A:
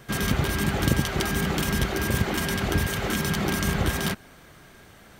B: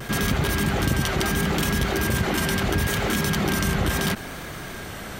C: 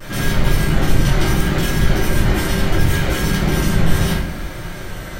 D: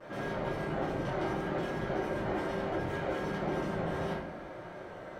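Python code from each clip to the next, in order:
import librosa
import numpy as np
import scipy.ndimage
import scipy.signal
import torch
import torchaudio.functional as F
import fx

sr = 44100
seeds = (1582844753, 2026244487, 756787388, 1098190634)

y1 = fx.vibrato(x, sr, rate_hz=0.74, depth_cents=29.0)
y1 = 10.0 ** (-11.5 / 20.0) * np.tanh(y1 / 10.0 ** (-11.5 / 20.0))
y1 = fx.env_flatten(y1, sr, amount_pct=50)
y2 = fx.octave_divider(y1, sr, octaves=2, level_db=1.0)
y2 = fx.room_shoebox(y2, sr, seeds[0], volume_m3=130.0, walls='mixed', distance_m=2.5)
y2 = y2 * librosa.db_to_amplitude(-6.5)
y3 = fx.bandpass_q(y2, sr, hz=620.0, q=1.2)
y3 = y3 * librosa.db_to_amplitude(-6.5)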